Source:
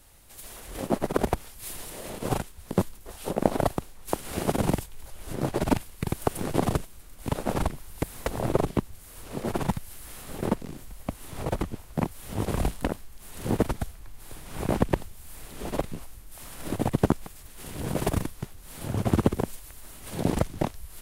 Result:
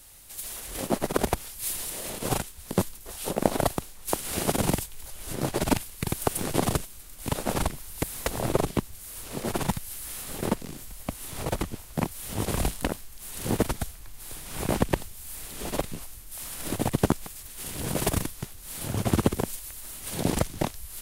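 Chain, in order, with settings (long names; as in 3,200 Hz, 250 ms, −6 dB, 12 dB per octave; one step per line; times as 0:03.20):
high-shelf EQ 2,400 Hz +9.5 dB
level −1 dB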